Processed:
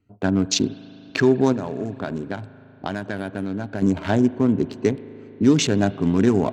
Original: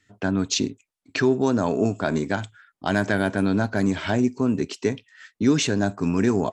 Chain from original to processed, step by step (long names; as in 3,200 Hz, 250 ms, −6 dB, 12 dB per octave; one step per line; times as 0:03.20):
adaptive Wiener filter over 25 samples
0:01.52–0:03.82: downward compressor, threshold −28 dBFS, peak gain reduction 11.5 dB
spring reverb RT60 3.8 s, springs 38 ms, chirp 65 ms, DRR 16.5 dB
level +3.5 dB